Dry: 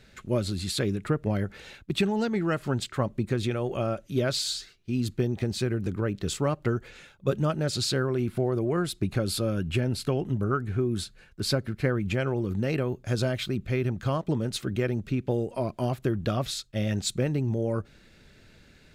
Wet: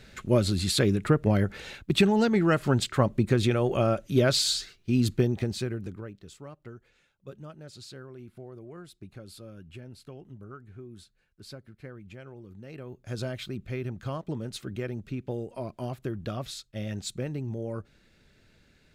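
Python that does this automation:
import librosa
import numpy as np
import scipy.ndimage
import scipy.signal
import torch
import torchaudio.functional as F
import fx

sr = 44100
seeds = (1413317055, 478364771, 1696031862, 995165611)

y = fx.gain(x, sr, db=fx.line((5.12, 4.0), (5.84, -6.5), (6.26, -18.0), (12.62, -18.0), (13.19, -6.5)))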